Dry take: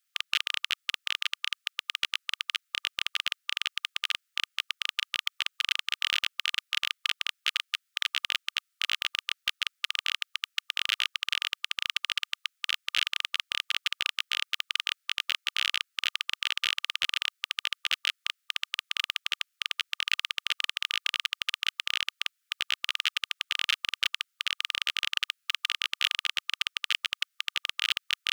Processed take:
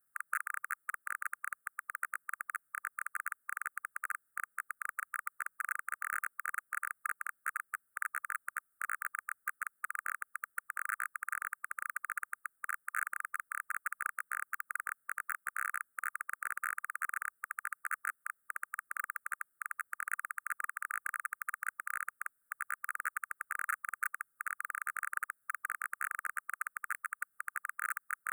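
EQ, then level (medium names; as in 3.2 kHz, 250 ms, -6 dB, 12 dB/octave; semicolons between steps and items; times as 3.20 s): elliptic band-stop 1.6–8.7 kHz, stop band 50 dB; tilt shelf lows +9 dB, about 1.3 kHz; treble shelf 4.2 kHz +7 dB; +5.0 dB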